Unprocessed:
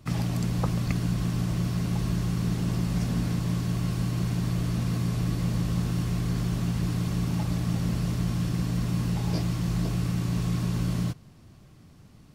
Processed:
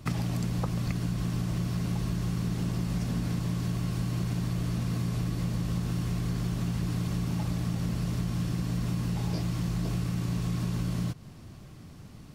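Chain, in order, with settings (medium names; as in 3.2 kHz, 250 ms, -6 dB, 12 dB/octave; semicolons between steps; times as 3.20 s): compression, threshold -32 dBFS, peak gain reduction 11 dB; trim +5 dB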